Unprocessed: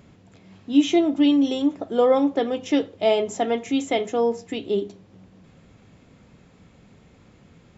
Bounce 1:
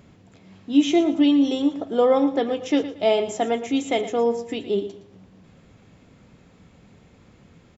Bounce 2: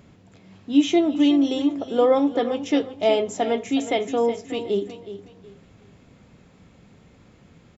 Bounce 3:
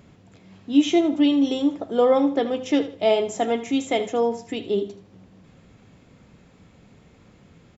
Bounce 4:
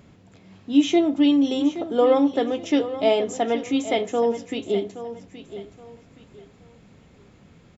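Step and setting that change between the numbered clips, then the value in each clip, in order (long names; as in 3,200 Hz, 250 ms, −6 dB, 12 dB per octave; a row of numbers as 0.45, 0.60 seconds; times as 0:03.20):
repeating echo, delay time: 115, 368, 78, 822 milliseconds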